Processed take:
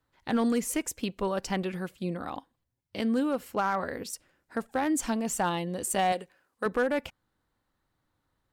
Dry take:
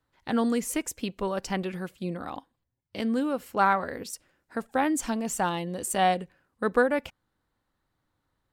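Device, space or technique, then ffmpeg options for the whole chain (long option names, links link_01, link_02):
limiter into clipper: -filter_complex "[0:a]asettb=1/sr,asplit=3[link_01][link_02][link_03];[link_01]atrim=end=6.124[link_04];[link_02]atrim=start=6.12:end=6.66,asetpts=PTS-STARTPTS,afade=type=in:duration=0.004:curve=qsin,afade=type=out:start_time=0.536:duration=0.004:curve=qsin,bass=frequency=250:gain=-13,treble=frequency=4000:gain=4[link_05];[link_03]atrim=start=6.656[link_06];[link_04][link_05]acrossfade=duration=0.004:curve1=hsin:curve2=qsin[link_07];[link_07][link_06]acrossfade=duration=0.004:curve1=qsin:curve2=hsin,alimiter=limit=-17dB:level=0:latency=1:release=61,asoftclip=type=hard:threshold=-19.5dB"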